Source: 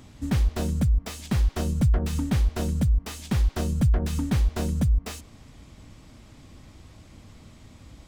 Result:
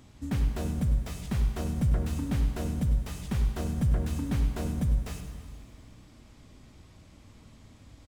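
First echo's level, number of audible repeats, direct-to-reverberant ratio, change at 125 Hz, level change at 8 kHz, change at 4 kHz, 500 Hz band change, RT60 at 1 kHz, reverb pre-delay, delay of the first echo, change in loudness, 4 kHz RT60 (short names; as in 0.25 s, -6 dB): -11.5 dB, 2, 5.0 dB, -4.5 dB, -6.0 dB, -7.0 dB, -4.5 dB, 2.3 s, 7 ms, 0.1 s, -4.5 dB, 2.2 s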